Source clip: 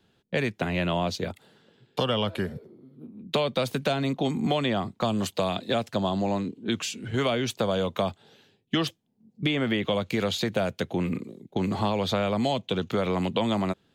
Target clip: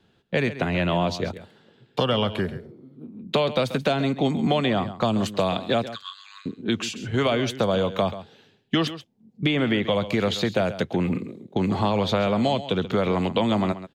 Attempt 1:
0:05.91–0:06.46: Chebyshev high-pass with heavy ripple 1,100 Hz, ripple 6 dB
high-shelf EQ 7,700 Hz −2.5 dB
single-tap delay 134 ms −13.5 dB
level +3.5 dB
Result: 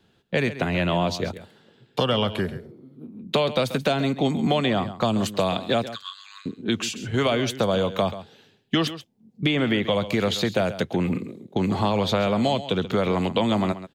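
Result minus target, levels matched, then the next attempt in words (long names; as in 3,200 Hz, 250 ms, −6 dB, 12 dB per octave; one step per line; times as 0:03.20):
8,000 Hz band +3.0 dB
0:05.91–0:06.46: Chebyshev high-pass with heavy ripple 1,100 Hz, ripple 6 dB
high-shelf EQ 7,700 Hz −10.5 dB
single-tap delay 134 ms −13.5 dB
level +3.5 dB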